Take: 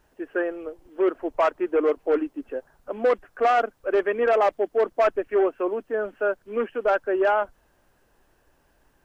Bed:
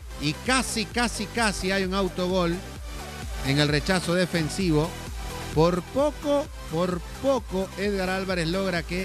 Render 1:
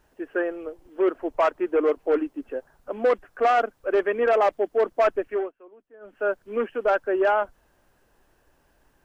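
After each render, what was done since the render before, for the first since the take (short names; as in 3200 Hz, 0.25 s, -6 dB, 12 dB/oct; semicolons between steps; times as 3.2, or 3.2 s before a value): 5.24–6.29 dip -23.5 dB, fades 0.29 s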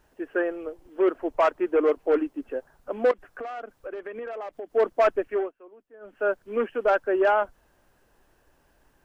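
3.11–4.73 compressor 10:1, threshold -32 dBFS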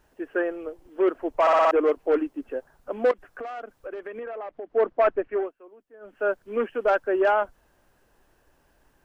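1.41 stutter in place 0.06 s, 5 plays; 4.23–5.43 LPF 2500 Hz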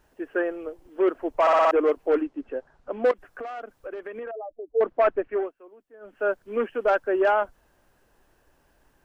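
2.21–3.04 air absorption 93 m; 4.31–4.81 spectral contrast raised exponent 2.6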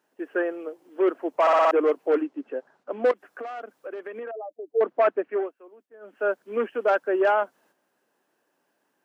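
HPF 200 Hz 24 dB/oct; gate -59 dBFS, range -7 dB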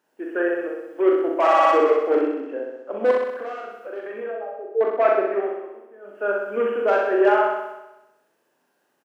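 doubler 40 ms -4 dB; flutter echo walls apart 10.9 m, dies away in 0.97 s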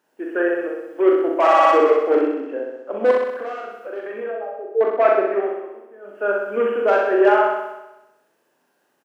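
gain +2.5 dB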